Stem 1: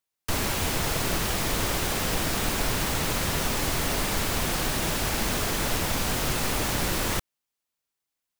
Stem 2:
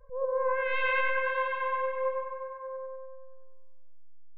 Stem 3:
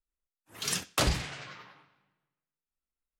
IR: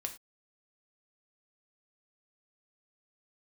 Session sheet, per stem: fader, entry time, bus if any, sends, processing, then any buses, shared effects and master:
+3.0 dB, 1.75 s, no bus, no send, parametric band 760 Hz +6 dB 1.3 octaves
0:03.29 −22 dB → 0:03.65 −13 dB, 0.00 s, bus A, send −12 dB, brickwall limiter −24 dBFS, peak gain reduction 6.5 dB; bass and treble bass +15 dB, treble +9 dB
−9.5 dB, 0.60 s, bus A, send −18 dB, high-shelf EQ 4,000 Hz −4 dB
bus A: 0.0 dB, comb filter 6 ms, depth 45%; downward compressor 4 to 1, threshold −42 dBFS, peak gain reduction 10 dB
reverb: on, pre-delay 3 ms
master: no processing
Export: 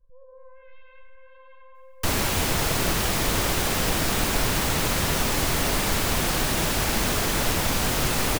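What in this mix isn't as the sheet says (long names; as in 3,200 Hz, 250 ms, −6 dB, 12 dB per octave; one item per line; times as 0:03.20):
stem 1: missing parametric band 760 Hz +6 dB 1.3 octaves
stem 2: send −12 dB → −18 dB
stem 3: muted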